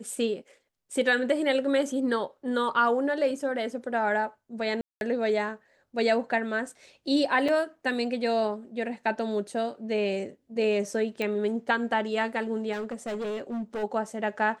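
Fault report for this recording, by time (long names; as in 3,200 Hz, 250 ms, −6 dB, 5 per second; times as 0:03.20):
0:04.81–0:05.01: drop-out 201 ms
0:07.48: drop-out 4.9 ms
0:11.22: click −18 dBFS
0:12.72–0:13.84: clipping −29 dBFS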